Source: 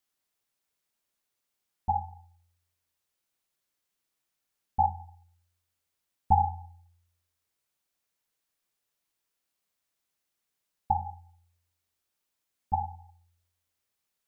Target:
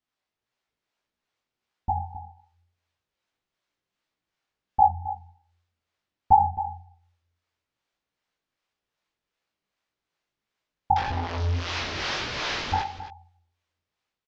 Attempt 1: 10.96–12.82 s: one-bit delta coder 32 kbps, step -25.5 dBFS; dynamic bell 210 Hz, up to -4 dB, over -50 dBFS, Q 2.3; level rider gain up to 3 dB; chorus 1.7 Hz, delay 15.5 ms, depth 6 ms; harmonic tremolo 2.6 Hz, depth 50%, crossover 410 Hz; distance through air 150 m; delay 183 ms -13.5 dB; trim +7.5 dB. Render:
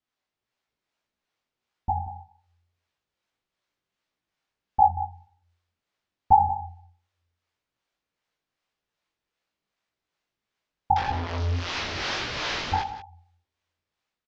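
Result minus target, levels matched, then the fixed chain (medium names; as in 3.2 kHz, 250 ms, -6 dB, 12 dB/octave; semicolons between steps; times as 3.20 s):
echo 83 ms early
10.96–12.82 s: one-bit delta coder 32 kbps, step -25.5 dBFS; dynamic bell 210 Hz, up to -4 dB, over -50 dBFS, Q 2.3; level rider gain up to 3 dB; chorus 1.7 Hz, delay 15.5 ms, depth 6 ms; harmonic tremolo 2.6 Hz, depth 50%, crossover 410 Hz; distance through air 150 m; delay 266 ms -13.5 dB; trim +7.5 dB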